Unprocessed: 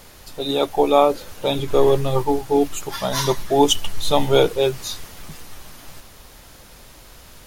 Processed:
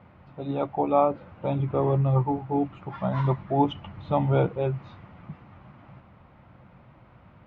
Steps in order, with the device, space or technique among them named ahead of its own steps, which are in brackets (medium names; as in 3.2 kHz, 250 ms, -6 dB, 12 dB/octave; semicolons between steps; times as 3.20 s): bass cabinet (cabinet simulation 82–2000 Hz, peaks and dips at 90 Hz +6 dB, 130 Hz +9 dB, 190 Hz +7 dB, 430 Hz -8 dB, 1.7 kHz -8 dB); trim -5 dB